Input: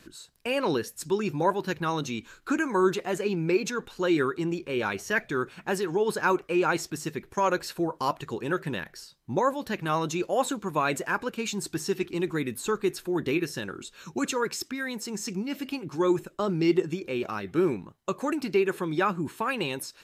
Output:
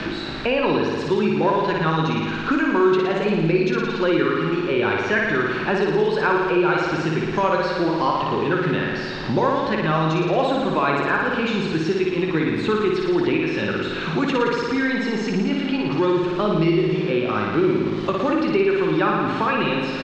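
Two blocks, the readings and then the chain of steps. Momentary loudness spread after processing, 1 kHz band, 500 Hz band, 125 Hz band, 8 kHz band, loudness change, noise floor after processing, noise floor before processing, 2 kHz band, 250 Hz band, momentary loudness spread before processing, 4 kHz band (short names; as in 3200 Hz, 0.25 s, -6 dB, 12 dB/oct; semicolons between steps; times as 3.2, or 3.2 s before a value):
4 LU, +7.5 dB, +7.5 dB, +10.0 dB, n/a, +8.0 dB, -27 dBFS, -58 dBFS, +8.5 dB, +8.5 dB, 8 LU, +7.5 dB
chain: zero-crossing step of -36.5 dBFS; LPF 4100 Hz 24 dB/oct; doubler 19 ms -11 dB; flutter echo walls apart 9.7 m, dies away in 1.3 s; three-band squash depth 70%; gain +2.5 dB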